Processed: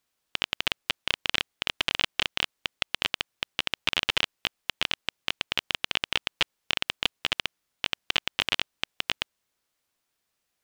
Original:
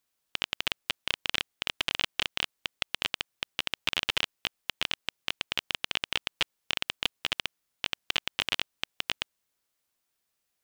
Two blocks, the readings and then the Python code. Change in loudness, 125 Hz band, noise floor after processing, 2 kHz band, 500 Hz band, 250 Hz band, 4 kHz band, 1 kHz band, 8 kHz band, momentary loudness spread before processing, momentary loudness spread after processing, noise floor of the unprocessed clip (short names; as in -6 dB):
+3.0 dB, +3.5 dB, -80 dBFS, +3.0 dB, +3.5 dB, +3.5 dB, +3.0 dB, +3.5 dB, +1.0 dB, 6 LU, 6 LU, -81 dBFS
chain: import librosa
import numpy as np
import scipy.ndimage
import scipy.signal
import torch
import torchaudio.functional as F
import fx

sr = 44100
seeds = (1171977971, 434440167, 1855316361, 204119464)

y = fx.high_shelf(x, sr, hz=7900.0, db=-6.0)
y = y * 10.0 ** (3.5 / 20.0)